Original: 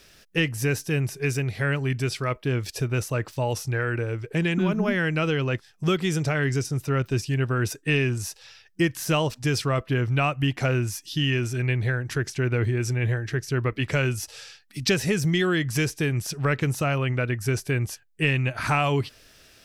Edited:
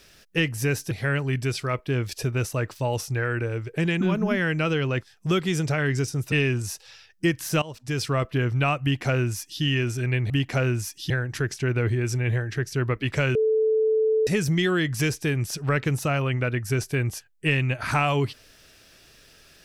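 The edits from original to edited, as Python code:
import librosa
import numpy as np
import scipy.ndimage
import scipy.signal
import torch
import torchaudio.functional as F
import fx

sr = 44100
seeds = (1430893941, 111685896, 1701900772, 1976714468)

y = fx.edit(x, sr, fx.cut(start_s=0.91, length_s=0.57),
    fx.cut(start_s=6.89, length_s=0.99),
    fx.fade_in_from(start_s=9.18, length_s=0.5, floor_db=-20.0),
    fx.duplicate(start_s=10.38, length_s=0.8, to_s=11.86),
    fx.bleep(start_s=14.11, length_s=0.92, hz=438.0, db=-18.0), tone=tone)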